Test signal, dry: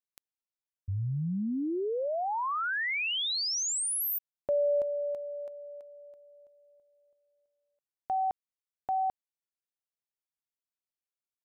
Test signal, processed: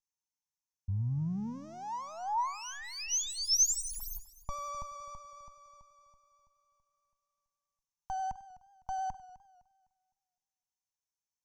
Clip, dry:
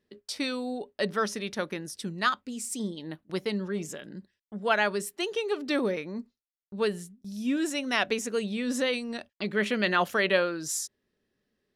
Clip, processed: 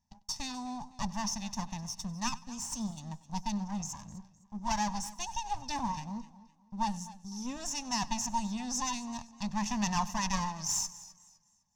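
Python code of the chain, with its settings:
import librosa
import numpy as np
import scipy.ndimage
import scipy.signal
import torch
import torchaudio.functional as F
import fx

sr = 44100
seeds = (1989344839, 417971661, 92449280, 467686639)

y = fx.lower_of_two(x, sr, delay_ms=1.1)
y = fx.curve_eq(y, sr, hz=(160.0, 230.0, 350.0, 560.0, 940.0, 1400.0, 2900.0, 4200.0, 6000.0, 9200.0), db=(0, -3, -20, -18, 3, -15, -11, -8, 11, -10))
y = fx.vibrato(y, sr, rate_hz=11.0, depth_cents=18.0)
y = fx.echo_feedback(y, sr, ms=96, feedback_pct=31, wet_db=-20.5)
y = fx.echo_warbled(y, sr, ms=255, feedback_pct=31, rate_hz=2.8, cents=62, wet_db=-18)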